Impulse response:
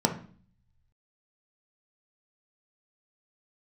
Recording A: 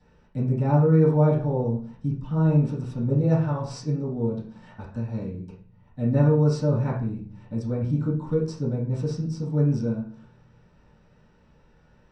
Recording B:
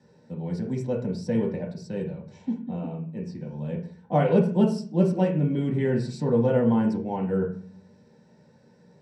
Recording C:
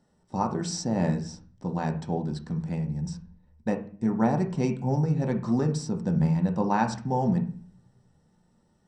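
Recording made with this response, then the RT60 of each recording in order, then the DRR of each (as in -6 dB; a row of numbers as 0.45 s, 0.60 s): C; 0.45 s, 0.45 s, 0.45 s; -12.0 dB, -2.5 dB, 3.0 dB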